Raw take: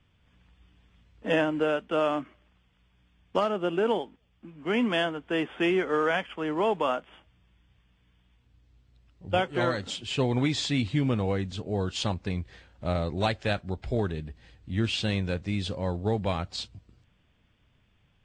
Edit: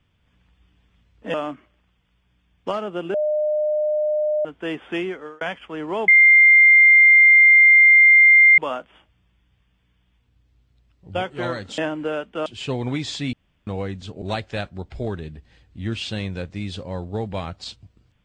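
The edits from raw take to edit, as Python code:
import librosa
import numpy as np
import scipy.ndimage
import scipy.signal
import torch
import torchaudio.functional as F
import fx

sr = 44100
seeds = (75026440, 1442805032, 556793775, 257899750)

y = fx.edit(x, sr, fx.move(start_s=1.34, length_s=0.68, to_s=9.96),
    fx.bleep(start_s=3.82, length_s=1.31, hz=606.0, db=-18.0),
    fx.fade_out_span(start_s=5.63, length_s=0.46),
    fx.insert_tone(at_s=6.76, length_s=2.5, hz=2100.0, db=-8.0),
    fx.room_tone_fill(start_s=10.83, length_s=0.34),
    fx.cut(start_s=11.72, length_s=1.42), tone=tone)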